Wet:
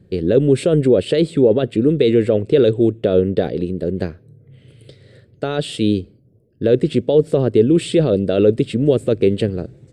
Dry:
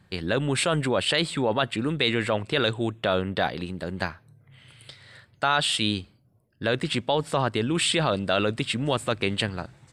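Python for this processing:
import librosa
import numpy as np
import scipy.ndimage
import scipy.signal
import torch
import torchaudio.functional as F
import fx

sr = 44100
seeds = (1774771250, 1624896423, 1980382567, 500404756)

y = fx.low_shelf_res(x, sr, hz=650.0, db=13.0, q=3.0)
y = y * librosa.db_to_amplitude(-4.5)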